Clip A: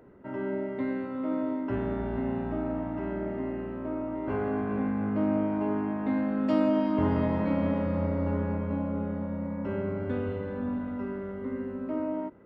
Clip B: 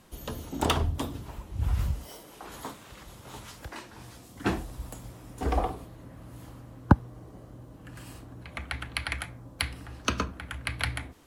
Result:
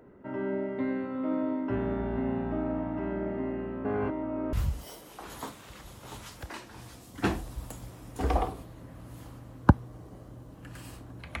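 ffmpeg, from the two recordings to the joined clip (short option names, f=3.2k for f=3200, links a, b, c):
-filter_complex "[0:a]apad=whole_dur=11.4,atrim=end=11.4,asplit=2[a][b];[a]atrim=end=3.852[c];[b]atrim=start=3.848:end=4.532,asetpts=PTS-STARTPTS,areverse[d];[1:a]atrim=start=1.748:end=8.62[e];[c][d]acrossfade=d=0.004:c1=hsin:c2=hsin[f];[f][e]acrossfade=d=0.004:c1=hsin:c2=hsin"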